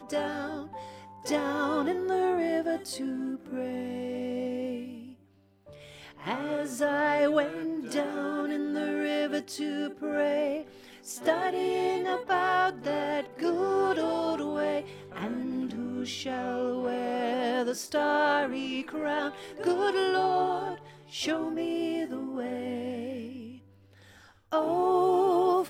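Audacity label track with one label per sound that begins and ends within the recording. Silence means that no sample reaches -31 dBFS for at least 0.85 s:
6.220000	23.260000	sound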